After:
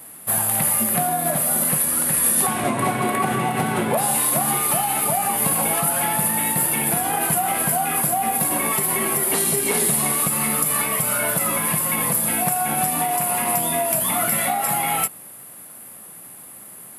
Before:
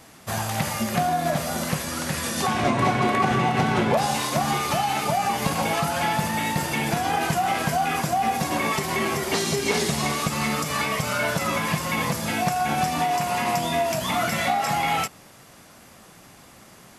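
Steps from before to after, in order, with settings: HPF 120 Hz 12 dB/oct; resonant high shelf 7900 Hz +12 dB, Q 3

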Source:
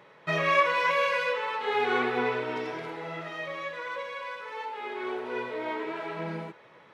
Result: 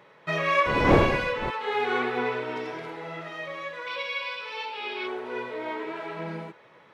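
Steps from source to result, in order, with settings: 0.65–1.49 wind noise 500 Hz -26 dBFS; 3.87–5.07 spectral gain 2200–5800 Hz +12 dB

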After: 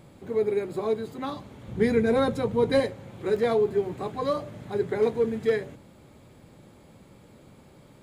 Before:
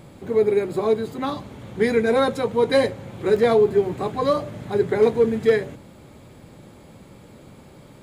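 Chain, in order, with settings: 1.68–2.8 low shelf 240 Hz +11.5 dB; gain -6.5 dB

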